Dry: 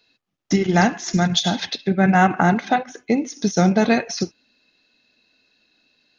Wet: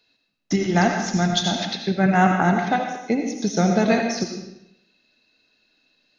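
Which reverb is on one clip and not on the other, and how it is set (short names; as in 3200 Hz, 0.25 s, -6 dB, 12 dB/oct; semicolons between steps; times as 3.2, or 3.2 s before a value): digital reverb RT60 0.83 s, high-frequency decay 0.9×, pre-delay 45 ms, DRR 3.5 dB; gain -3 dB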